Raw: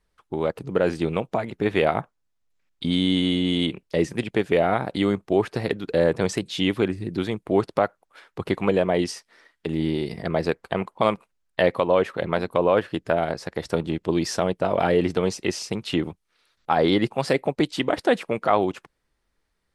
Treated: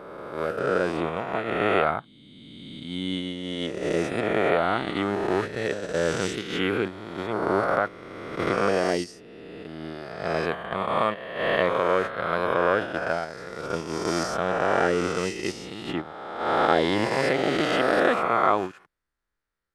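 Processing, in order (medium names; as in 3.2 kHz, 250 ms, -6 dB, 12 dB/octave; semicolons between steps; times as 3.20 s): reverse spectral sustain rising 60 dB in 2.70 s; gate -19 dBFS, range -8 dB; peaking EQ 1.4 kHz +7.5 dB 0.7 oct; trim -7.5 dB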